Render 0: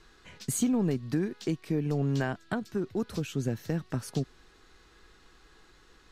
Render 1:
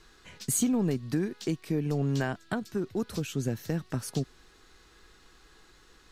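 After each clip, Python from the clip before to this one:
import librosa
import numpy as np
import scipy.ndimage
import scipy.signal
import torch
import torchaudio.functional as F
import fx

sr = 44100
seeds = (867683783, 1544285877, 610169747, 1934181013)

y = fx.high_shelf(x, sr, hz=5500.0, db=6.0)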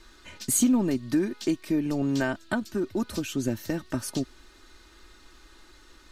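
y = x + 0.62 * np.pad(x, (int(3.3 * sr / 1000.0), 0))[:len(x)]
y = y * librosa.db_to_amplitude(2.5)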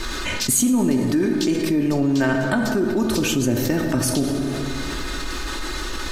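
y = fx.rev_plate(x, sr, seeds[0], rt60_s=1.8, hf_ratio=0.55, predelay_ms=0, drr_db=5.0)
y = fx.env_flatten(y, sr, amount_pct=70)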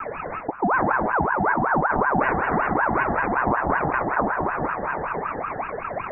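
y = scipy.signal.sosfilt(scipy.signal.butter(16, 1400.0, 'lowpass', fs=sr, output='sos'), x)
y = y + 10.0 ** (-4.5 / 20.0) * np.pad(y, (int(710 * sr / 1000.0), 0))[:len(y)]
y = fx.ring_lfo(y, sr, carrier_hz=880.0, swing_pct=50, hz=5.3)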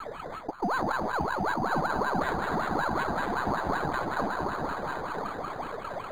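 y = np.where(x < 0.0, 10.0 ** (-3.0 / 20.0) * x, x)
y = y + 10.0 ** (-9.0 / 20.0) * np.pad(y, (int(1014 * sr / 1000.0), 0))[:len(y)]
y = np.interp(np.arange(len(y)), np.arange(len(y))[::8], y[::8])
y = y * librosa.db_to_amplitude(-5.5)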